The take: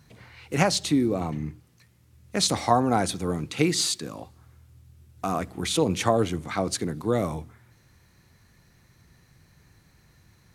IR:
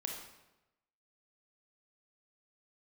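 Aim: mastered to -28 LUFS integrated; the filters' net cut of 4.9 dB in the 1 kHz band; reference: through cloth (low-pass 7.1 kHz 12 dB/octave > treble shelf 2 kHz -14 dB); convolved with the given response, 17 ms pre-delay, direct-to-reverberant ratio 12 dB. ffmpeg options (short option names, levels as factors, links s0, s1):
-filter_complex "[0:a]equalizer=f=1000:t=o:g=-4,asplit=2[s0][s1];[1:a]atrim=start_sample=2205,adelay=17[s2];[s1][s2]afir=irnorm=-1:irlink=0,volume=0.251[s3];[s0][s3]amix=inputs=2:normalize=0,lowpass=7100,highshelf=f=2000:g=-14"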